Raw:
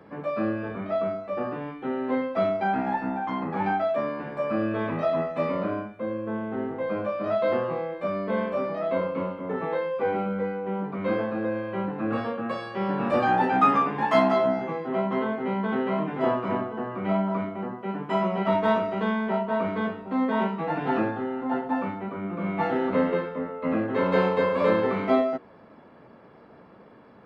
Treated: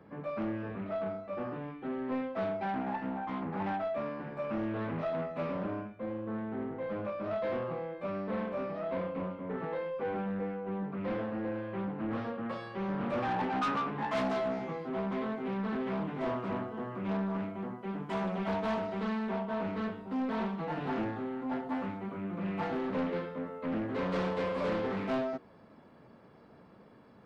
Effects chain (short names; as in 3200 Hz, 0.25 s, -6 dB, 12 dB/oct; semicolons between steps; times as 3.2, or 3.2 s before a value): tone controls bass +5 dB, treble -2 dB, from 14.15 s treble +10 dB; soft clip -19.5 dBFS, distortion -14 dB; Doppler distortion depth 0.27 ms; gain -7.5 dB